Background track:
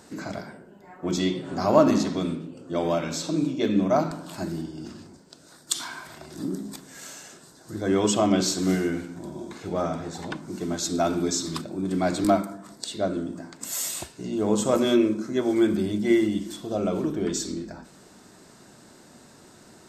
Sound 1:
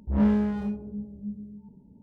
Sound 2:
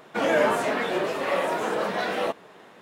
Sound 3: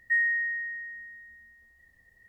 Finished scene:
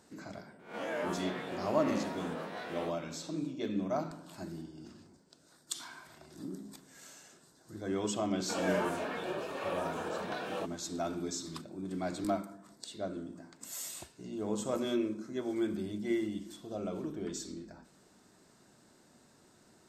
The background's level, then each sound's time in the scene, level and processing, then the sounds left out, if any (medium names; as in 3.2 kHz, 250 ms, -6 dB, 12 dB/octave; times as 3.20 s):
background track -12 dB
0.59 s: add 2 -16.5 dB + reverse spectral sustain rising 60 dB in 0.40 s
8.34 s: add 2 -11.5 dB + Butterworth band-stop 2 kHz, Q 7.1
not used: 1, 3